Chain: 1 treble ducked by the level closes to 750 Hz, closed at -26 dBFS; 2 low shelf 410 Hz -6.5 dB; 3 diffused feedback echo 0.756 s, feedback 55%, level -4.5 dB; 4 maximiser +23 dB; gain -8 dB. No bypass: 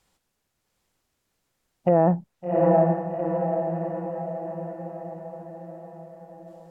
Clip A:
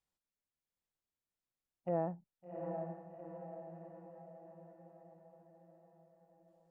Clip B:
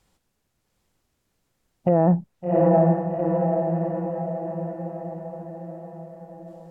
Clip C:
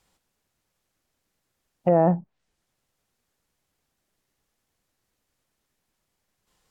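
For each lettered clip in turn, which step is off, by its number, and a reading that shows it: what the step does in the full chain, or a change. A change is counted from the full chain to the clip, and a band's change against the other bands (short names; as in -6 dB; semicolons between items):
4, crest factor change +5.5 dB; 2, 125 Hz band +3.5 dB; 3, momentary loudness spread change -12 LU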